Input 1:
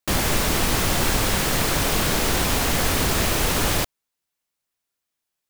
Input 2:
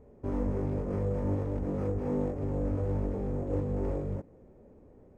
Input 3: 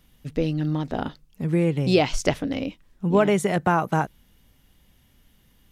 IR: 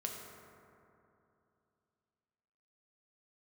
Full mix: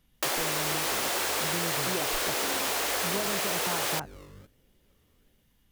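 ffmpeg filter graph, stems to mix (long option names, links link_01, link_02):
-filter_complex "[0:a]highpass=frequency=380:width=0.5412,highpass=frequency=380:width=1.3066,adelay=150,volume=1dB[link_01];[1:a]acrusher=samples=22:mix=1:aa=0.000001:lfo=1:lforange=13.2:lforate=1.3,adelay=250,volume=-15.5dB[link_02];[2:a]volume=-8.5dB[link_03];[link_01][link_02][link_03]amix=inputs=3:normalize=0,acompressor=threshold=-26dB:ratio=6"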